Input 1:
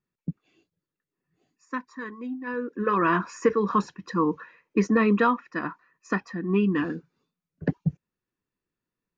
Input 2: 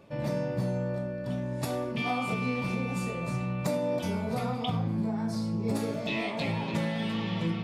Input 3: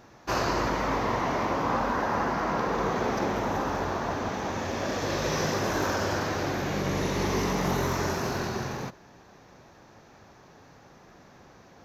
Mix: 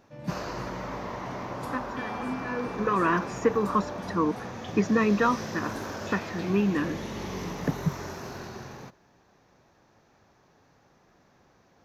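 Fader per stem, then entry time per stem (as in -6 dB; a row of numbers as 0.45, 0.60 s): -2.0, -10.5, -9.0 dB; 0.00, 0.00, 0.00 s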